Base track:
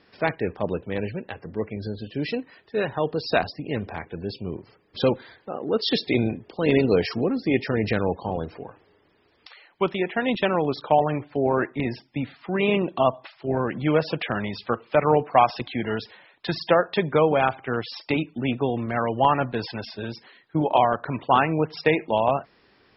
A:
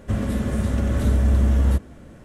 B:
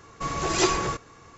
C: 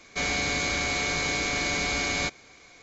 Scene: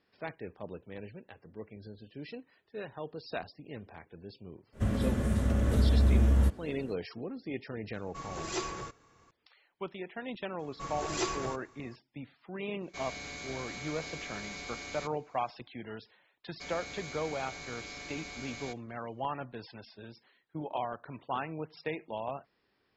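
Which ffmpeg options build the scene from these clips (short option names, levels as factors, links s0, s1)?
-filter_complex "[2:a]asplit=2[s0][s1];[3:a]asplit=2[s2][s3];[0:a]volume=0.158[s4];[s3]agate=range=0.0224:threshold=0.00631:ratio=3:release=100:detection=peak[s5];[1:a]atrim=end=2.24,asetpts=PTS-STARTPTS,volume=0.501,afade=t=in:d=0.05,afade=t=out:st=2.19:d=0.05,adelay=4720[s6];[s0]atrim=end=1.37,asetpts=PTS-STARTPTS,volume=0.224,afade=t=in:d=0.004:c=hsin,afade=t=out:st=1.366:d=0.004:c=hsin,adelay=350154S[s7];[s1]atrim=end=1.37,asetpts=PTS-STARTPTS,volume=0.299,afade=t=in:d=0.004:c=hsin,afade=t=out:st=1.366:d=0.004:c=hsin,adelay=10590[s8];[s2]atrim=end=2.82,asetpts=PTS-STARTPTS,volume=0.168,afade=t=in:d=0.1,afade=t=out:st=2.72:d=0.1,adelay=12780[s9];[s5]atrim=end=2.82,asetpts=PTS-STARTPTS,volume=0.141,afade=t=in:d=0.004:c=hsin,afade=t=out:st=2.816:d=0.004:c=hsin,adelay=16440[s10];[s4][s6][s7][s8][s9][s10]amix=inputs=6:normalize=0"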